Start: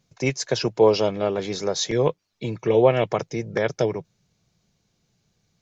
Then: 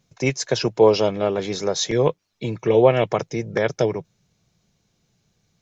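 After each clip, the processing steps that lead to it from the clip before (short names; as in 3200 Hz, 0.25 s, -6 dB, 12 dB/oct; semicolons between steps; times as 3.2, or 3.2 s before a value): notch 4600 Hz, Q 19; gain +2 dB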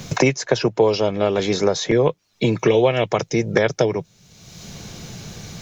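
three-band squash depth 100%; gain +1.5 dB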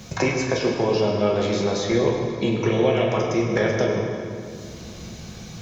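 reverb RT60 2.5 s, pre-delay 7 ms, DRR -2.5 dB; gain -7 dB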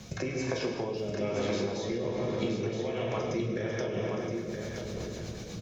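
compressor, threshold -25 dBFS, peak gain reduction 10 dB; rotary speaker horn 1.2 Hz, later 8 Hz, at 3.54; on a send: echo 0.971 s -5.5 dB; on the sum: gain -2.5 dB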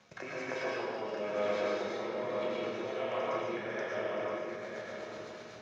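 G.711 law mismatch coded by A; band-pass 1300 Hz, Q 0.91; digital reverb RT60 1.1 s, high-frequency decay 0.8×, pre-delay 75 ms, DRR -3.5 dB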